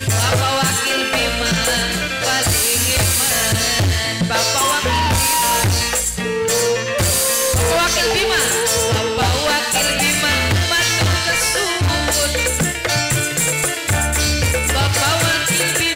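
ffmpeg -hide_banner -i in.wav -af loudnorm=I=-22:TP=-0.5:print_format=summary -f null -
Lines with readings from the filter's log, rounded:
Input Integrated:    -15.7 LUFS
Input True Peak:     -10.4 dBTP
Input LRA:             0.9 LU
Input Threshold:     -25.7 LUFS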